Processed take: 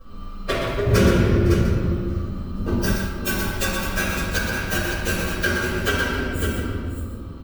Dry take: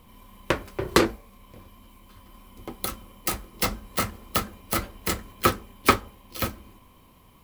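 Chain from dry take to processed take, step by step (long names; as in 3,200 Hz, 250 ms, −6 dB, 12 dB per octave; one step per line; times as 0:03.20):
partials spread apart or drawn together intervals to 112%
0:05.91–0:06.57: gain on a spectral selection 570–6,900 Hz −25 dB
convolution reverb RT60 1.3 s, pre-delay 4 ms, DRR −6.5 dB
downward compressor 4 to 1, threshold −26 dBFS, peak gain reduction 13 dB
0:00.86–0:02.96: parametric band 110 Hz +14 dB 2.6 octaves
multi-tap delay 123/507/557/700 ms −7/−18.5/−8/−16 dB
one half of a high-frequency compander decoder only
level +4.5 dB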